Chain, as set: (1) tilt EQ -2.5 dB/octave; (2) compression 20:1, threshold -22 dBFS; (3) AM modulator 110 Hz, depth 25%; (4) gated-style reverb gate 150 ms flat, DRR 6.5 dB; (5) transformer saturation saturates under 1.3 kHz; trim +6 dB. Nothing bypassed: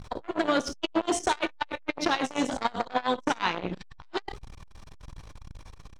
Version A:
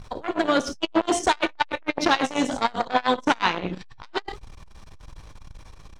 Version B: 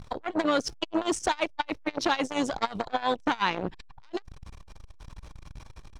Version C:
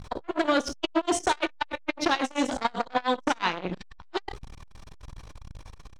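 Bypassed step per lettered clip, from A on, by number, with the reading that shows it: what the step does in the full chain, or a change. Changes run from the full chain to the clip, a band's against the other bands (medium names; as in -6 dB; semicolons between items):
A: 2, mean gain reduction 2.5 dB; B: 4, momentary loudness spread change -5 LU; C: 3, momentary loudness spread change -2 LU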